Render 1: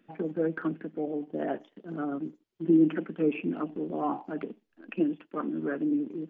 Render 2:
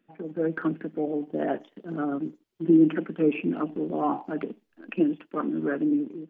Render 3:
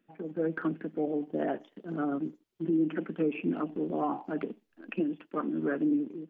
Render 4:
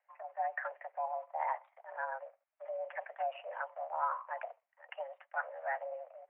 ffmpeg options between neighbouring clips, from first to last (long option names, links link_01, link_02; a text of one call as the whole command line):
ffmpeg -i in.wav -af "dynaudnorm=framelen=110:gausssize=7:maxgain=10dB,volume=-6dB" out.wav
ffmpeg -i in.wav -af "alimiter=limit=-18dB:level=0:latency=1:release=234,volume=-2.5dB" out.wav
ffmpeg -i in.wav -af "highpass=frequency=460:width_type=q:width=0.5412,highpass=frequency=460:width_type=q:width=1.307,lowpass=frequency=2100:width_type=q:width=0.5176,lowpass=frequency=2100:width_type=q:width=0.7071,lowpass=frequency=2100:width_type=q:width=1.932,afreqshift=250,volume=-1dB" out.wav